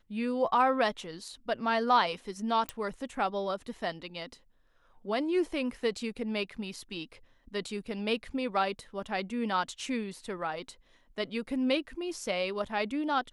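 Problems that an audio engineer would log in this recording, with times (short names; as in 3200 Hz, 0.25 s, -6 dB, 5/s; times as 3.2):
2.69 pop -17 dBFS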